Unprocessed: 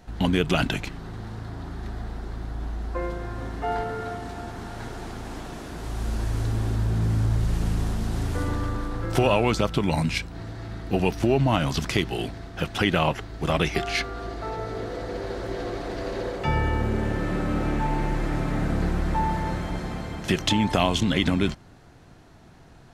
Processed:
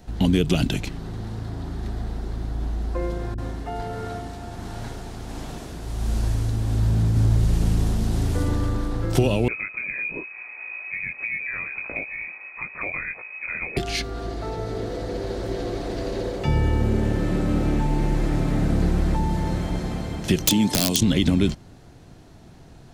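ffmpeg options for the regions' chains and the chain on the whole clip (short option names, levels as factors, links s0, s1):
-filter_complex "[0:a]asettb=1/sr,asplit=3[s0][s1][s2];[s0]atrim=end=3.344[s3];[s1]atrim=start=3.34:end=7.16,asetpts=PTS-STARTPTS,afade=t=in:d=0.004:c=qsin,afade=t=out:st=3.816:d=0.004:c=qsin,acrossover=split=330[s4][s5];[s5]adelay=40[s6];[s4][s6]amix=inputs=2:normalize=0,atrim=end_sample=168462,tremolo=f=1.4:d=0.29[s7];[s2]atrim=start=7.156[s8];[s3][s7]acrossfade=d=0.004:c1=hsin:c2=qsin[s9];[s9][s8]acrossfade=d=0.004:c1=qsin:c2=hsin,asettb=1/sr,asplit=3[s10][s11][s12];[s10]atrim=end=9.484[s13];[s11]atrim=start=9.48:end=13.77,asetpts=PTS-STARTPTS,afade=t=in:d=0.004:c=qsin,afade=t=out:st=4.286:d=0.004:c=qsin,flanger=delay=17.5:depth=6.9:speed=1.6,lowpass=f=2200:t=q:w=0.5098,lowpass=f=2200:t=q:w=0.6013,lowpass=f=2200:t=q:w=0.9,lowpass=f=2200:t=q:w=2.563,afreqshift=-2600[s14];[s12]atrim=start=13.766[s15];[s13][s14]acrossfade=d=0.004:c1=hsin:c2=qsin[s16];[s16][s15]acrossfade=d=0.004:c1=qsin:c2=hsin,asettb=1/sr,asplit=3[s17][s18][s19];[s17]atrim=end=20.464[s20];[s18]atrim=start=20.46:end=21.01,asetpts=PTS-STARTPTS,afade=t=in:d=0.004:c=qsin,afade=t=out:st=0.546:d=0.004:c=qsin,highpass=180,bass=f=250:g=3,treble=f=4000:g=7,aeval=exprs='(mod(3.55*val(0)+1,2)-1)/3.55':c=same[s21];[s19]atrim=start=21.006[s22];[s20][s21]acrossfade=d=0.004:c1=hsin:c2=qsin[s23];[s23][s22]acrossfade=d=0.004:c1=qsin:c2=hsin,equalizer=f=1400:t=o:w=1.9:g=-6.5,acrossover=split=460|3000[s24][s25][s26];[s25]acompressor=threshold=0.0158:ratio=6[s27];[s24][s27][s26]amix=inputs=3:normalize=0,volume=1.68"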